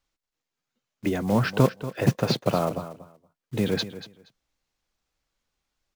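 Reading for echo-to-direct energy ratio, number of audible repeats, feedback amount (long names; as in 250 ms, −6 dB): −14.0 dB, 2, 17%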